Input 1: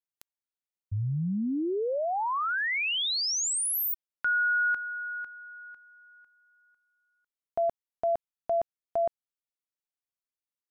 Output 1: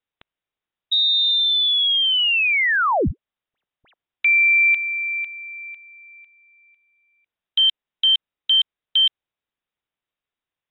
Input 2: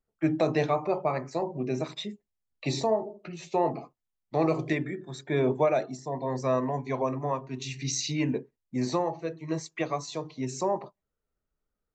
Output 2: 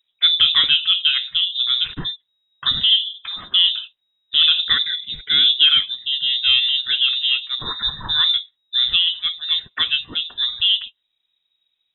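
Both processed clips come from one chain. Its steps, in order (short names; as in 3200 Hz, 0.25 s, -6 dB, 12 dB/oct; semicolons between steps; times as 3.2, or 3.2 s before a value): in parallel at -11 dB: soft clip -24 dBFS; on the sum: inverted band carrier 3800 Hz; gain +8.5 dB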